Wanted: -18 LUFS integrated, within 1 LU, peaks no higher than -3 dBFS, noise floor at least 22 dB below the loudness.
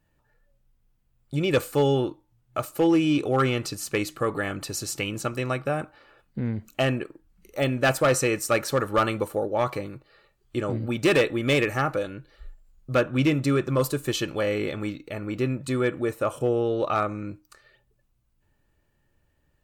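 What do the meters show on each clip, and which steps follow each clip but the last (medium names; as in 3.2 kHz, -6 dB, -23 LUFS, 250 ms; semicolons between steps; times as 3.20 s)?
clipped samples 0.4%; clipping level -14.5 dBFS; loudness -25.5 LUFS; peak level -14.5 dBFS; loudness target -18.0 LUFS
-> clip repair -14.5 dBFS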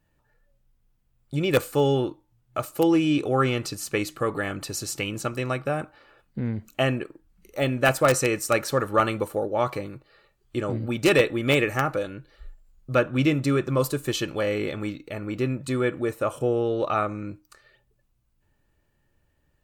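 clipped samples 0.0%; loudness -25.5 LUFS; peak level -5.5 dBFS; loudness target -18.0 LUFS
-> trim +7.5 dB; peak limiter -3 dBFS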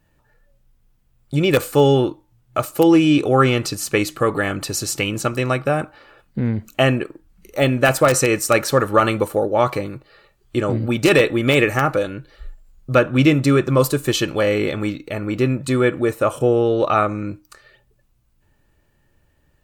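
loudness -18.5 LUFS; peak level -3.0 dBFS; noise floor -62 dBFS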